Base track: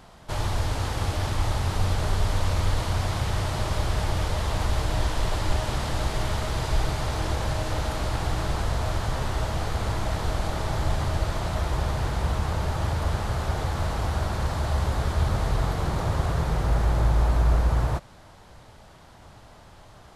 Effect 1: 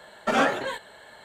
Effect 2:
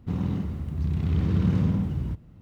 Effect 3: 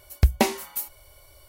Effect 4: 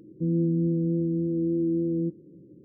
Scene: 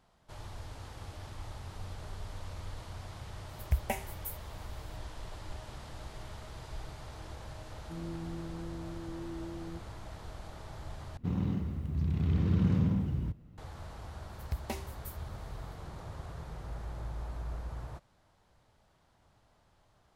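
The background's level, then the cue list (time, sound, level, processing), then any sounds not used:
base track -18.5 dB
3.49 s: add 3 -10.5 dB + static phaser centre 1.2 kHz, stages 6
7.69 s: add 4 -17 dB
11.17 s: replace with 2 -4.5 dB
14.29 s: add 3 -18 dB
not used: 1

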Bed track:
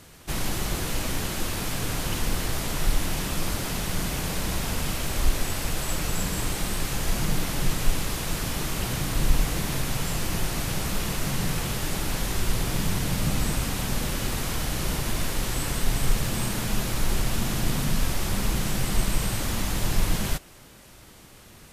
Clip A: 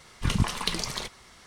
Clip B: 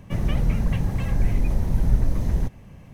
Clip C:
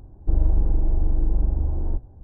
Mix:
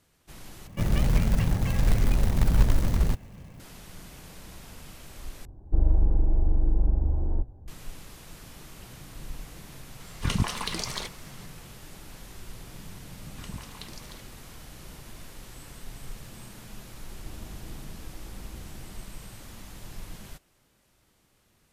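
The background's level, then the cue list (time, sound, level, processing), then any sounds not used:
bed track -17.5 dB
0.67 s: replace with B -1 dB + short-mantissa float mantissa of 2-bit
5.45 s: replace with C -2 dB
10.00 s: add A -0.5 dB + peak limiter -13 dBFS
13.14 s: add A -16 dB
16.97 s: add C -13 dB + tilt EQ +2.5 dB/octave

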